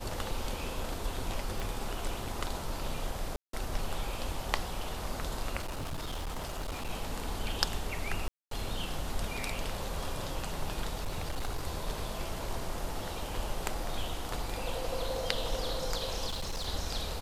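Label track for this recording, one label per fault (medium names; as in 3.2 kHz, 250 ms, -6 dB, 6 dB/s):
1.600000	1.600000	pop
3.360000	3.530000	dropout 173 ms
5.590000	6.900000	clipped -33 dBFS
8.280000	8.510000	dropout 233 ms
10.970000	11.630000	clipped -29.5 dBFS
16.260000	16.680000	clipped -31.5 dBFS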